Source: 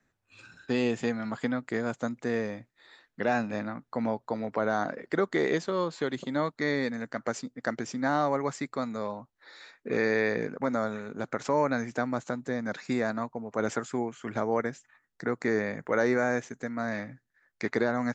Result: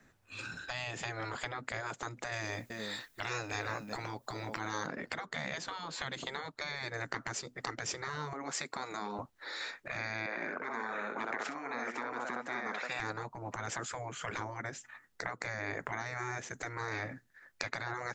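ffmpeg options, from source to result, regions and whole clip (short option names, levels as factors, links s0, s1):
-filter_complex "[0:a]asettb=1/sr,asplit=3[s0][s1][s2];[s0]atrim=end=2.324[s3];[s1]atrim=start=2.32:end=4.87,asetpts=PTS-STARTPTS,afade=t=in:d=0.004:c=qsin,afade=t=out:st=2.546:d=0.004:c=qsin,aemphasis=mode=production:type=75kf,aecho=1:1:381:0.112,atrim=end_sample=112455[s4];[s2]atrim=start=4.866[s5];[s3][s4]acrossfade=d=0.004:c1=hsin:c2=qsin[s6];[s6][s5]acrossfade=d=0.004:c1=qsin:c2=hsin,asettb=1/sr,asplit=3[s7][s8][s9];[s7]atrim=end=8.334[s10];[s8]atrim=start=8.33:end=9.19,asetpts=PTS-STARTPTS,afade=t=in:d=0.004:c=qsin,afade=t=out:st=0.856:d=0.004:c=qsin,highpass=290,acompressor=threshold=0.0126:ratio=2.5:attack=3.2:release=140:knee=1:detection=peak[s11];[s9]atrim=start=9.186[s12];[s10][s11]acrossfade=d=0.004:c1=hsin:c2=qsin[s13];[s13][s12]acrossfade=d=0.004:c1=qsin:c2=hsin,asettb=1/sr,asplit=3[s14][s15][s16];[s14]atrim=end=10.264[s17];[s15]atrim=start=10.26:end=13,asetpts=PTS-STARTPTS,afade=t=in:d=0.004:c=qsin,afade=t=out:st=2.736:d=0.004:c=qsin,highpass=270,acrossover=split=560 2800:gain=0.2 1 0.2[s18][s19][s20];[s18][s19][s20]amix=inputs=3:normalize=0,aecho=1:1:63|531:0.447|0.15,atrim=end_sample=120834[s21];[s16]atrim=start=12.996[s22];[s17][s21]acrossfade=d=0.004:c1=hsin:c2=qsin[s23];[s23][s22]acrossfade=d=0.004:c1=qsin:c2=hsin,acompressor=threshold=0.0178:ratio=8,afftfilt=real='re*lt(hypot(re,im),0.0282)':imag='im*lt(hypot(re,im),0.0282)':win_size=1024:overlap=0.75,volume=2.99"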